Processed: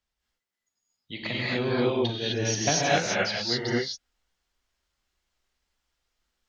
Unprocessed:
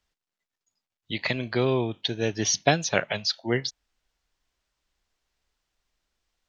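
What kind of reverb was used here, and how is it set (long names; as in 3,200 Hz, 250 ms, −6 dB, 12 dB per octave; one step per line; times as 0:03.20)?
reverb whose tail is shaped and stops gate 280 ms rising, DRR −6.5 dB
level −7 dB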